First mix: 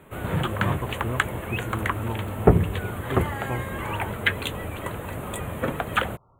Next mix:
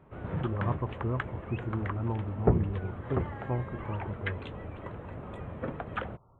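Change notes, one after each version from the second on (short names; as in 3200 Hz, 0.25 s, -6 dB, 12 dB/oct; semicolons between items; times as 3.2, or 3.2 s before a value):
background -7.0 dB; master: add tape spacing loss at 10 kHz 36 dB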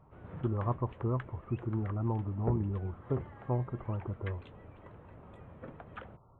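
background -11.5 dB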